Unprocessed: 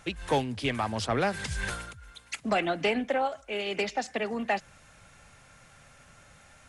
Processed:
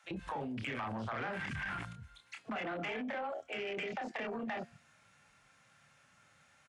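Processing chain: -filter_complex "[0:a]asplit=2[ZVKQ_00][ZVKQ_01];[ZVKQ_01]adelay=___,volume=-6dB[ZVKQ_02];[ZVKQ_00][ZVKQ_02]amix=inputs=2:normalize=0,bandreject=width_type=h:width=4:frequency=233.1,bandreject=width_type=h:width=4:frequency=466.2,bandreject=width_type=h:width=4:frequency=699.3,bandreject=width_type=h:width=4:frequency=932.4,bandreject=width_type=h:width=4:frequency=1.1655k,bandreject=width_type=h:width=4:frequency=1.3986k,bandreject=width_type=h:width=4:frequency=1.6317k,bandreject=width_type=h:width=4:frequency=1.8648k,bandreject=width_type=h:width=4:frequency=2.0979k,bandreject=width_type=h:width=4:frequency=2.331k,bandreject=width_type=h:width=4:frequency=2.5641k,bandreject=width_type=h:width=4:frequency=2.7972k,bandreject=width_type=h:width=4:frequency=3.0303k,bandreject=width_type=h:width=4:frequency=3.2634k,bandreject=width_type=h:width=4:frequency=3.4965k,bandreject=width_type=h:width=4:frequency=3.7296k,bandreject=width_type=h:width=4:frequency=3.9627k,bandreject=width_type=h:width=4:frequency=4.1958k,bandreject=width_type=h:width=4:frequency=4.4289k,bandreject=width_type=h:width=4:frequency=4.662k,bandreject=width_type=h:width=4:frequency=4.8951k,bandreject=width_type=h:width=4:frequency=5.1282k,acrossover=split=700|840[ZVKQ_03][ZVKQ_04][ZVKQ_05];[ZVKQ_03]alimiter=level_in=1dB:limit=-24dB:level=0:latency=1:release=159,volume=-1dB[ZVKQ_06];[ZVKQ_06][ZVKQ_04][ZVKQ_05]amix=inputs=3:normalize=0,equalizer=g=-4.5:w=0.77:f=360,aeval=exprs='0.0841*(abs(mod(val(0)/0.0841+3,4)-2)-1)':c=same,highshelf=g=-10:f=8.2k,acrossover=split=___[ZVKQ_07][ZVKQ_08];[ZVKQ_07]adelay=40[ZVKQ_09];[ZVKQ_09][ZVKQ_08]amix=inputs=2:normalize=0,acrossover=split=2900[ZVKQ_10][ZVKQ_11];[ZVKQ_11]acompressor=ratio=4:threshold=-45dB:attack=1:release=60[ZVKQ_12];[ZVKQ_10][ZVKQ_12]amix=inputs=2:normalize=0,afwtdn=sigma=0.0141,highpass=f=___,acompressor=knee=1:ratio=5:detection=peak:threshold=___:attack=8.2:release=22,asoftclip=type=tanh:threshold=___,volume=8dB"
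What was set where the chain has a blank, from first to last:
27, 570, 150, -48dB, -37.5dB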